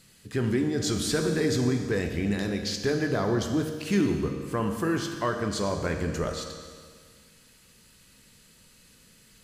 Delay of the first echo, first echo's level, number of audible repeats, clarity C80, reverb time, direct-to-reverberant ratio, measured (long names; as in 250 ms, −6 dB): no echo audible, no echo audible, no echo audible, 7.0 dB, 1.8 s, 4.0 dB